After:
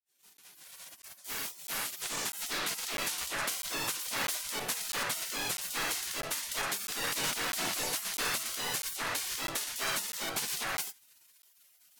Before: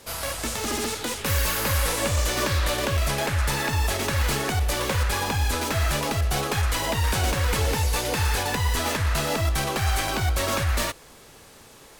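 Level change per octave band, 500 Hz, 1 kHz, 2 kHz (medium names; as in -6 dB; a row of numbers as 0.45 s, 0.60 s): -15.0 dB, -11.5 dB, -8.0 dB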